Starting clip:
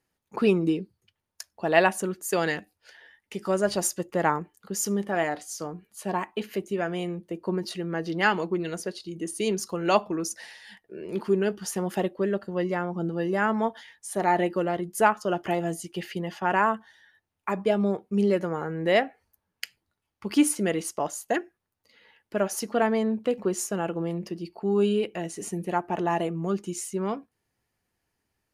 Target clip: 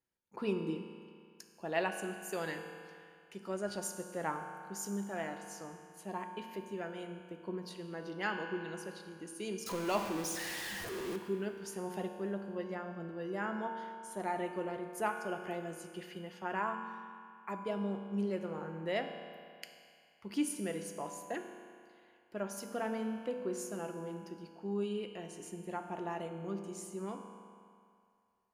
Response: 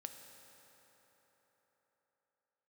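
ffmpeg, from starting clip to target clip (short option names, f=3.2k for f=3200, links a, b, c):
-filter_complex "[0:a]asettb=1/sr,asplit=3[a][b][c];[a]atrim=end=9.664[d];[b]atrim=start=9.66:end=11.16,asetpts=PTS-STARTPTS,afade=t=in:d=0.004:c=qsin,afade=t=out:st=1.496:d=0.004:c=qsin,aeval=exprs='val(0)+0.5*0.0708*sgn(val(0))':c=same[e];[c]atrim=start=11.156[f];[d][e]acrossfade=d=0.004:c1=hsin:c2=qsin[g];[g][f]acrossfade=d=0.004:c1=qsin:c2=hsin[h];[1:a]atrim=start_sample=2205,asetrate=79380,aresample=44100[i];[h][i]afir=irnorm=-1:irlink=0,volume=-3dB"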